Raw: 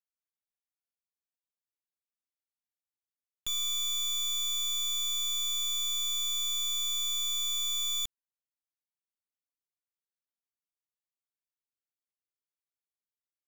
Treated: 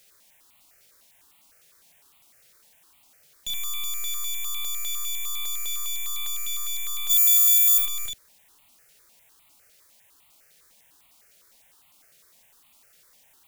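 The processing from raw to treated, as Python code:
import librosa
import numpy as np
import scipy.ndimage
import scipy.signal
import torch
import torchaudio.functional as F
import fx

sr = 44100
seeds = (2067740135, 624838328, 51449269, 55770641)

p1 = fx.riaa(x, sr, side='recording', at=(7.09, 7.77), fade=0.02)
p2 = fx.room_early_taps(p1, sr, ms=(35, 76), db=(-3.0, -3.0))
p3 = fx.quant_dither(p2, sr, seeds[0], bits=8, dither='triangular')
p4 = p2 + F.gain(torch.from_numpy(p3), -10.0).numpy()
p5 = fx.peak_eq(p4, sr, hz=1900.0, db=2.5, octaves=2.0)
y = fx.phaser_held(p5, sr, hz=9.9, low_hz=280.0, high_hz=1600.0)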